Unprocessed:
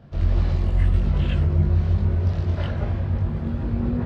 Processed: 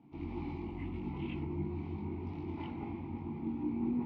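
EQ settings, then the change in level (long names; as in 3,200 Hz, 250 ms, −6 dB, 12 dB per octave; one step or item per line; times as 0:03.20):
formant filter u
mains-hum notches 50/100 Hz
+4.0 dB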